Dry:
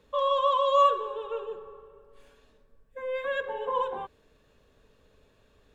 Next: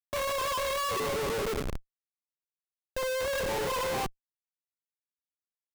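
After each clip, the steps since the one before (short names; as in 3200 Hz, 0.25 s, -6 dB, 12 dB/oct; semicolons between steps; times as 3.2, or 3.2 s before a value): Schmitt trigger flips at -40 dBFS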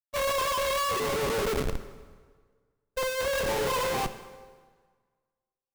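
gate -33 dBFS, range -26 dB; plate-style reverb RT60 1.6 s, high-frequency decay 0.8×, DRR 10.5 dB; gain +3.5 dB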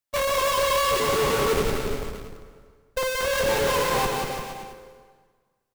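compressor 2:1, threshold -36 dBFS, peak gain reduction 6.5 dB; on a send: bouncing-ball echo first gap 0.18 s, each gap 0.85×, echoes 5; on the sum: gain +8.5 dB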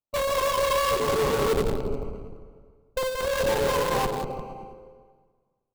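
Wiener smoothing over 25 samples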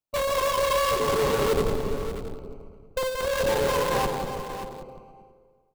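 echo 0.584 s -11.5 dB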